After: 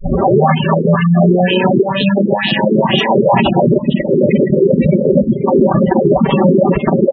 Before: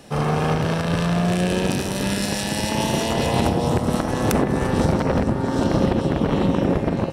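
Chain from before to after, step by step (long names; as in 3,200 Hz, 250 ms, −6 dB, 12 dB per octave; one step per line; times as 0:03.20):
turntable start at the beginning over 0.40 s
high-pass filter 130 Hz 6 dB per octave
comb filter 5.2 ms, depth 78%
auto-filter low-pass sine 2.1 Hz 390–3,300 Hz
reverb reduction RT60 1.1 s
gain on a spectral selection 0:03.68–0:05.47, 610–1,900 Hz −26 dB
on a send: echo with shifted repeats 475 ms, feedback 35%, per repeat +71 Hz, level −22 dB
on the sum: gate on every frequency bin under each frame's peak −15 dB strong
parametric band 1,500 Hz −8.5 dB 0.26 octaves
boost into a limiter +12 dB
level −1 dB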